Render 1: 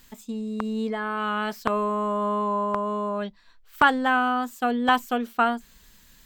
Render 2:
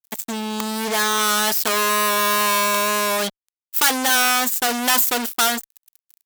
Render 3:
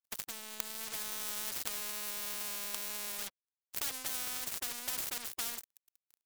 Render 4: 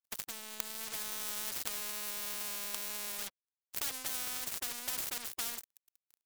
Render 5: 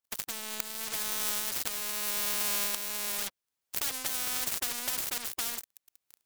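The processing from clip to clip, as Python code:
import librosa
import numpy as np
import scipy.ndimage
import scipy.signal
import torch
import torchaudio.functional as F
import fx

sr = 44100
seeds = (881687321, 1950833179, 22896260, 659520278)

y1 = fx.fuzz(x, sr, gain_db=36.0, gate_db=-44.0)
y1 = fx.riaa(y1, sr, side='recording')
y1 = y1 * 10.0 ** (-5.0 / 20.0)
y2 = fx.power_curve(y1, sr, exponent=2.0)
y2 = fx.spectral_comp(y2, sr, ratio=4.0)
y2 = y2 * 10.0 ** (-6.5 / 20.0)
y3 = y2
y4 = fx.recorder_agc(y3, sr, target_db=-13.5, rise_db_per_s=11.0, max_gain_db=30)
y4 = np.clip(10.0 ** (12.5 / 20.0) * y4, -1.0, 1.0) / 10.0 ** (12.5 / 20.0)
y4 = y4 * 10.0 ** (2.5 / 20.0)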